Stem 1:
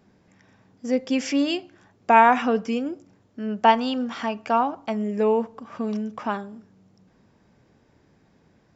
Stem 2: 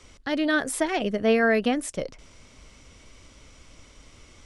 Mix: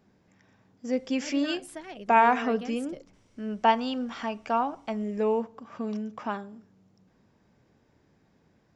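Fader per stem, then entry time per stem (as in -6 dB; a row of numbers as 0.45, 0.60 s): -5.0, -16.0 dB; 0.00, 0.95 s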